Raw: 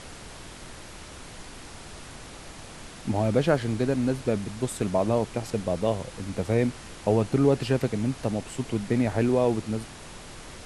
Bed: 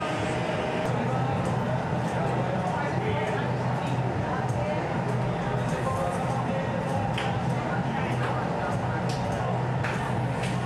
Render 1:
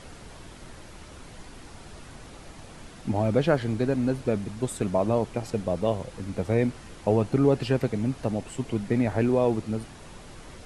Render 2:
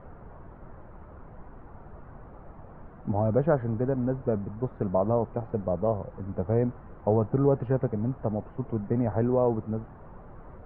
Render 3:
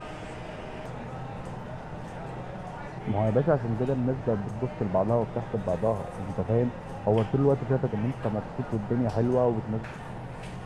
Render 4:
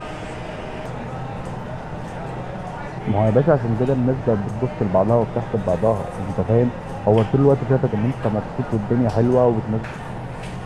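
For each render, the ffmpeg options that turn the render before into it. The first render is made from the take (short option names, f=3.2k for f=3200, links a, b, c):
-af "afftdn=nr=6:nf=-44"
-af "lowpass=f=1.3k:w=0.5412,lowpass=f=1.3k:w=1.3066,equalizer=f=290:t=o:w=0.75:g=-4.5"
-filter_complex "[1:a]volume=-11.5dB[a];[0:a][a]amix=inputs=2:normalize=0"
-af "volume=8dB,alimiter=limit=-3dB:level=0:latency=1"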